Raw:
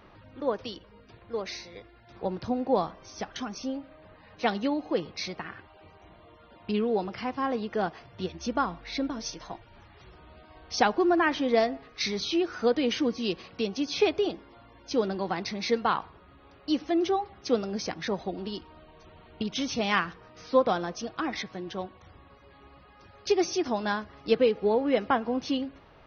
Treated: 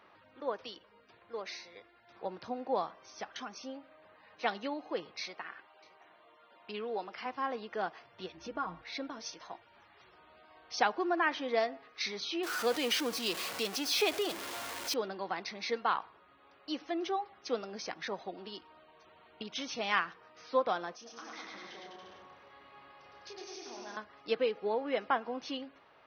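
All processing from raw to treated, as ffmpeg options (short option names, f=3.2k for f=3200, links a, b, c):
-filter_complex "[0:a]asettb=1/sr,asplit=3[a][b][c];[a]atrim=end=5.214[d];[b]atrim=start=5.21:end=7.26,asetpts=PTS-STARTPTS,afade=t=in:d=0.004:c=qsin,afade=t=out:st=2.046:d=0.004:c=qsin,highpass=f=290:p=1,aecho=1:1:613:0.0708,atrim=end_sample=90405[e];[c]atrim=start=7.256[f];[d][e]acrossfade=d=0.004:c1=hsin:c2=qsin[g];[g][f]acrossfade=d=0.004:c1=qsin:c2=hsin,asettb=1/sr,asplit=3[h][i][j];[h]atrim=end=8.374[k];[i]atrim=start=8.37:end=8.82,asetpts=PTS-STARTPTS,afade=t=in:d=0.004:c=qsin,afade=t=out:st=0.446:d=0.004:c=qsin,aemphasis=mode=reproduction:type=bsi,aecho=1:1:6.4:0.57,atrim=end_sample=19845,acompressor=threshold=-29dB:ratio=2:attack=3.2:release=140:knee=1:detection=peak[l];[j]atrim=start=8.816[m];[k][l]acrossfade=d=0.004:c1=hsin:c2=qsin[n];[n][m]acrossfade=d=0.004:c1=qsin:c2=hsin,asettb=1/sr,asplit=3[o][p][q];[o]atrim=end=12.434[r];[p]atrim=start=12.43:end=14.94,asetpts=PTS-STARTPTS,afade=t=in:d=0.004:c=qsin,afade=t=out:st=2.506:d=0.004:c=qsin,aeval=exprs='val(0)+0.5*0.0282*sgn(val(0))':c=same,highshelf=f=4.2k:g=9.5[s];[q]atrim=start=14.936[t];[r][s]acrossfade=d=0.004:c1=hsin:c2=qsin[u];[u][t]acrossfade=d=0.004:c1=qsin:c2=hsin,asettb=1/sr,asplit=3[v][w][x];[v]atrim=end=20.954[y];[w]atrim=start=20.95:end=23.97,asetpts=PTS-STARTPTS,afade=t=in:d=0.004:c=qsin,afade=t=out:st=3.016:d=0.004:c=qsin,acompressor=threshold=-44dB:ratio=3:attack=3.2:release=140:knee=1:detection=peak,asplit=2[z][aa];[aa]adelay=30,volume=-5.5dB[ab];[z][ab]amix=inputs=2:normalize=0,atrim=end_sample=133182,aecho=1:1:110|203.5|283|350.5|407.9|456.8:0.794|0.631|0.501|0.398|0.316|0.251,atrim=end_sample=133182[ac];[x]atrim=start=23.966[ad];[y][ac]acrossfade=d=0.004:c1=hsin:c2=qsin[ae];[ae][ad]acrossfade=d=0.004:c1=qsin:c2=hsin,highpass=f=1.1k:p=1,highshelf=f=3k:g=-8.5"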